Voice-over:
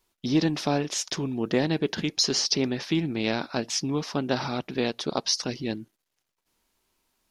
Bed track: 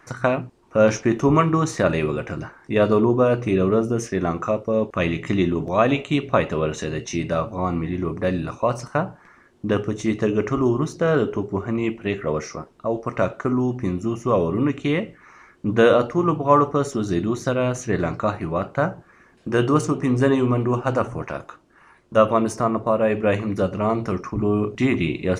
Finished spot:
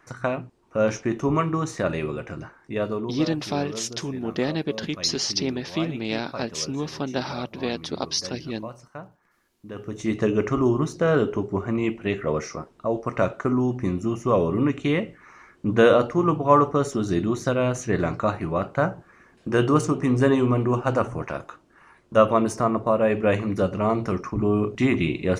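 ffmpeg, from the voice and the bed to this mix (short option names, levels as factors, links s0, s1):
-filter_complex "[0:a]adelay=2850,volume=0.891[s0];[1:a]volume=3.16,afade=t=out:st=2.55:d=0.66:silence=0.281838,afade=t=in:st=9.74:d=0.46:silence=0.16788[s1];[s0][s1]amix=inputs=2:normalize=0"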